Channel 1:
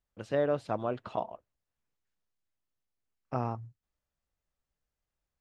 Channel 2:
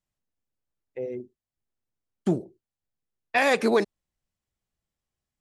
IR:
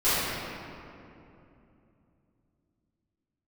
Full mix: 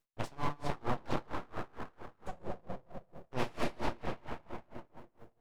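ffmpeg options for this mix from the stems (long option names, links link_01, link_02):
-filter_complex "[0:a]acontrast=87,highpass=frequency=52:width=0.5412,highpass=frequency=52:width=1.3066,acompressor=threshold=-27dB:ratio=2.5,volume=2dB,asplit=3[link_01][link_02][link_03];[link_02]volume=-15dB[link_04];[1:a]highpass=160,volume=-15dB,asplit=2[link_05][link_06];[link_06]volume=-6dB[link_07];[link_03]apad=whole_len=238365[link_08];[link_05][link_08]sidechaincompress=threshold=-38dB:ratio=8:attack=16:release=1190[link_09];[2:a]atrim=start_sample=2205[link_10];[link_04][link_07]amix=inputs=2:normalize=0[link_11];[link_11][link_10]afir=irnorm=-1:irlink=0[link_12];[link_01][link_09][link_12]amix=inputs=3:normalize=0,acrossover=split=480|3000[link_13][link_14][link_15];[link_14]acompressor=threshold=-34dB:ratio=6[link_16];[link_13][link_16][link_15]amix=inputs=3:normalize=0,aeval=exprs='abs(val(0))':channel_layout=same,aeval=exprs='val(0)*pow(10,-28*(0.5-0.5*cos(2*PI*4.4*n/s))/20)':channel_layout=same"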